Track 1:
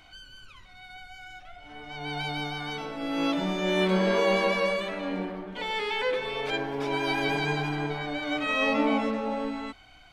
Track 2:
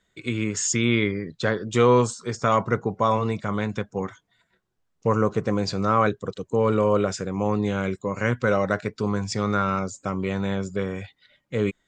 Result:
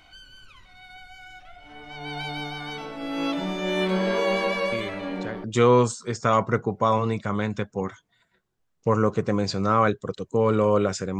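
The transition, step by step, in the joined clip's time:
track 1
0:04.72: mix in track 2 from 0:00.91 0.72 s −12 dB
0:05.44: continue with track 2 from 0:01.63

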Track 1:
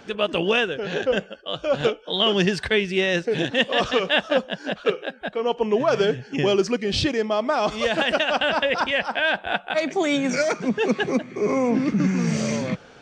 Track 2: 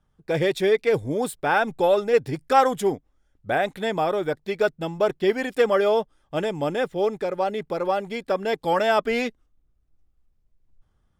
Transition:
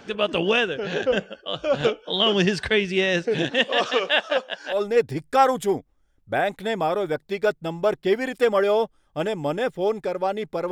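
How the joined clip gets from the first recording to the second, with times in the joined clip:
track 1
0:03.48–0:04.82: high-pass filter 210 Hz → 810 Hz
0:04.75: continue with track 2 from 0:01.92, crossfade 0.14 s

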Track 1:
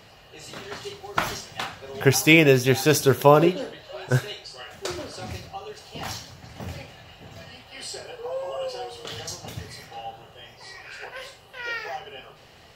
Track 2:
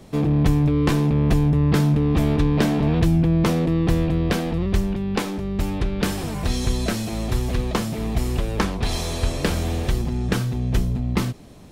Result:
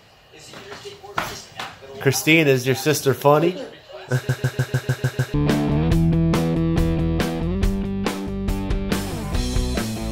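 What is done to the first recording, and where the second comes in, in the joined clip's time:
track 1
0:04.14: stutter in place 0.15 s, 8 plays
0:05.34: continue with track 2 from 0:02.45

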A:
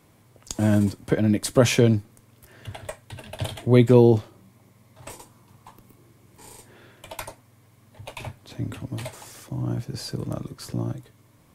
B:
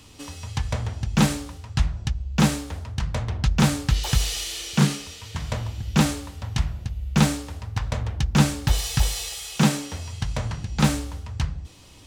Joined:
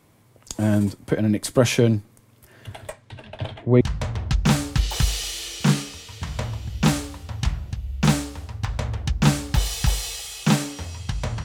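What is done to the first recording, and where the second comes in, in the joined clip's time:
A
0:02.92–0:03.81: low-pass filter 7,200 Hz → 1,800 Hz
0:03.81: continue with B from 0:02.94

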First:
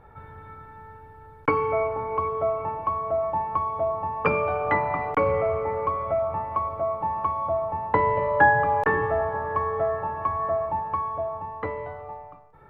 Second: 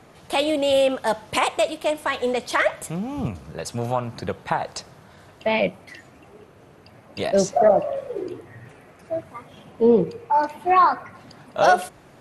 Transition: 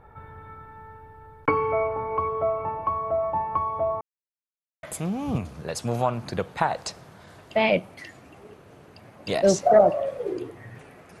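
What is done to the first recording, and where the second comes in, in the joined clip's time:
first
0:04.01–0:04.83: silence
0:04.83: continue with second from 0:02.73

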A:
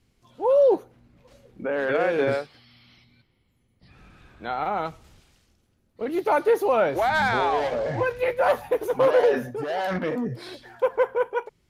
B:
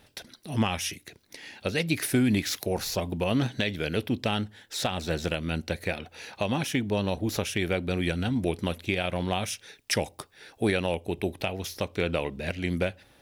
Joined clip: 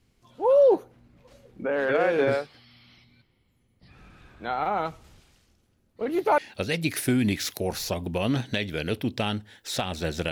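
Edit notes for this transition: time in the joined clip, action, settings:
A
0:06.38: continue with B from 0:01.44

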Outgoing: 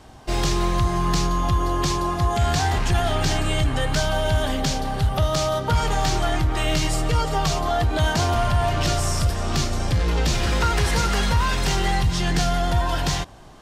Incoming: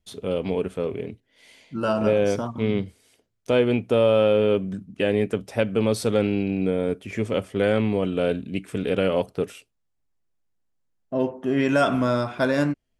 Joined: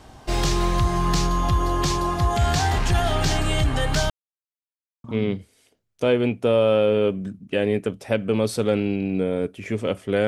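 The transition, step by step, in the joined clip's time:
outgoing
0:04.10–0:05.04: silence
0:05.04: continue with incoming from 0:02.51

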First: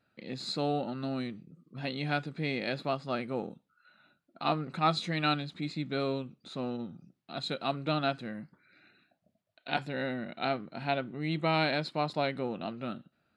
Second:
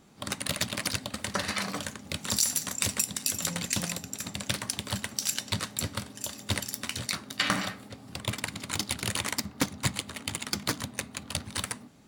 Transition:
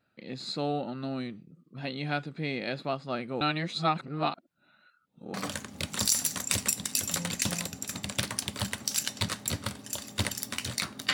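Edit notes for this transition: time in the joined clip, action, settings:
first
0:03.41–0:05.34: reverse
0:05.34: continue with second from 0:01.65

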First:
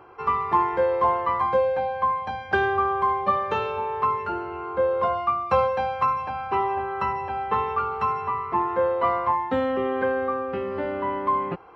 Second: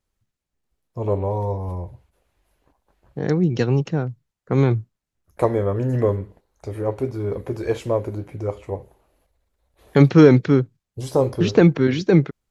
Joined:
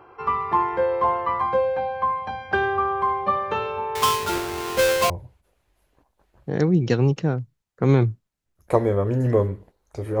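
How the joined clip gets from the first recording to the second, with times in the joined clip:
first
0:03.95–0:05.10: each half-wave held at its own peak
0:05.10: continue with second from 0:01.79

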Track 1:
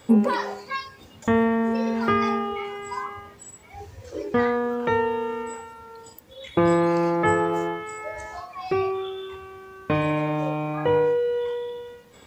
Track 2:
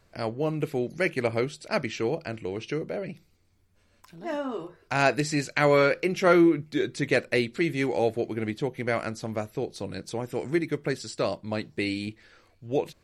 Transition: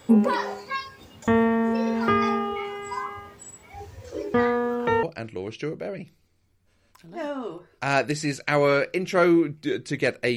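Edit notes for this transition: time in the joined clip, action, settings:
track 1
0:05.03: continue with track 2 from 0:02.12

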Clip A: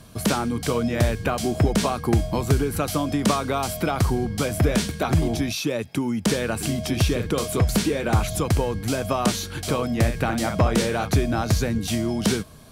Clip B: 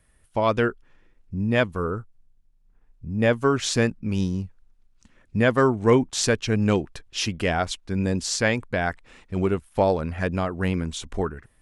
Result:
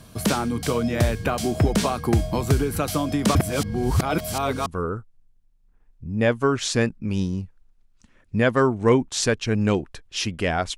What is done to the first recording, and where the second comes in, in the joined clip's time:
clip A
0:03.35–0:04.66: reverse
0:04.66: continue with clip B from 0:01.67

